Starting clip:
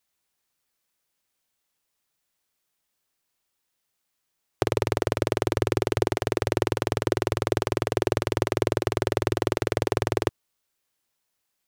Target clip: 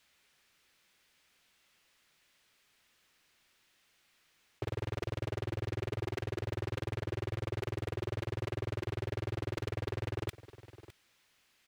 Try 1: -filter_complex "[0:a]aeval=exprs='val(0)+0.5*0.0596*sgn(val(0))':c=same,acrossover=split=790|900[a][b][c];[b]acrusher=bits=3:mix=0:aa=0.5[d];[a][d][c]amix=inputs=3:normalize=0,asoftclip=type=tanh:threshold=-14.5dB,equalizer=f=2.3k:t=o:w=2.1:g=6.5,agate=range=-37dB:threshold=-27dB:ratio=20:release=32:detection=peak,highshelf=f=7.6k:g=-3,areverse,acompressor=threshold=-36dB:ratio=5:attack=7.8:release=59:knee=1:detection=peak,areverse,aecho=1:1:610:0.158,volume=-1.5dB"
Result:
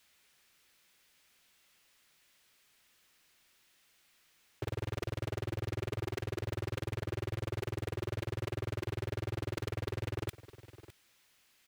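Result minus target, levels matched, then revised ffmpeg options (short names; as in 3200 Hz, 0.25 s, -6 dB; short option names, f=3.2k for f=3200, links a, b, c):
soft clip: distortion +12 dB; 8000 Hz band +3.5 dB
-filter_complex "[0:a]aeval=exprs='val(0)+0.5*0.0596*sgn(val(0))':c=same,acrossover=split=790|900[a][b][c];[b]acrusher=bits=3:mix=0:aa=0.5[d];[a][d][c]amix=inputs=3:normalize=0,asoftclip=type=tanh:threshold=-6.5dB,equalizer=f=2.3k:t=o:w=2.1:g=6.5,agate=range=-37dB:threshold=-27dB:ratio=20:release=32:detection=peak,highshelf=f=7.6k:g=-10.5,areverse,acompressor=threshold=-36dB:ratio=5:attack=7.8:release=59:knee=1:detection=peak,areverse,aecho=1:1:610:0.158,volume=-1.5dB"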